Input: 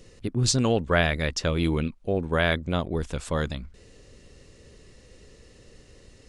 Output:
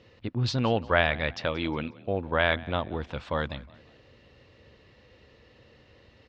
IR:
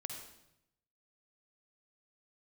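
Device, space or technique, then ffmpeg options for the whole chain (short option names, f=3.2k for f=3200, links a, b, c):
frequency-shifting delay pedal into a guitar cabinet: -filter_complex "[0:a]asplit=4[a][b][c][d];[b]adelay=180,afreqshift=40,volume=-21.5dB[e];[c]adelay=360,afreqshift=80,volume=-29.2dB[f];[d]adelay=540,afreqshift=120,volume=-37dB[g];[a][e][f][g]amix=inputs=4:normalize=0,highpass=92,equalizer=f=170:t=q:w=4:g=-9,equalizer=f=270:t=q:w=4:g=-4,equalizer=f=400:t=q:w=4:g=-7,equalizer=f=890:t=q:w=4:g=4,lowpass=f=3.9k:w=0.5412,lowpass=f=3.9k:w=1.3066,asettb=1/sr,asplit=3[h][i][j];[h]atrim=end=1.454[k];[i]atrim=start=1.45:end=1.95,asetpts=PTS-STARTPTS,afade=t=in:d=0.004:c=qsin,afade=t=out:st=0.496:d=0.004:c=qsin,highpass=f=150:p=1[l];[j]atrim=start=1.946[m];[k][l]acrossfade=d=0.004:c1=hsin:c2=qsin[n];[n][m]acrossfade=d=0.004:c1=qsin:c2=hsin"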